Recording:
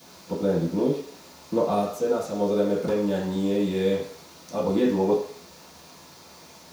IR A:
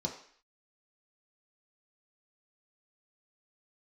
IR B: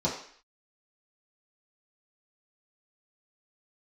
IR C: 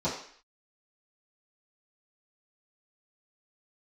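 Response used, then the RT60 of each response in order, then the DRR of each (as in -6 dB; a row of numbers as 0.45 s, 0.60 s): C; 0.55 s, 0.55 s, 0.55 s; -0.5 dB, -7.5 dB, -12.5 dB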